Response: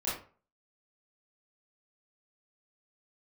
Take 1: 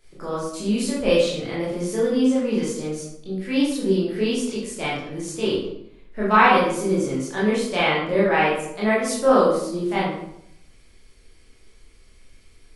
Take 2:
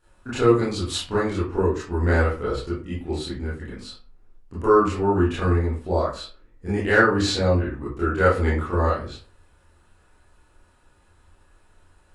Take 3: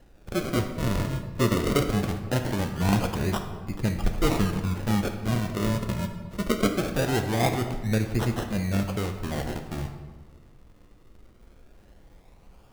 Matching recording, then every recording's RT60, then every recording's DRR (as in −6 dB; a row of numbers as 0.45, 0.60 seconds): 2; 0.75, 0.40, 1.4 seconds; −8.5, −10.0, 5.0 decibels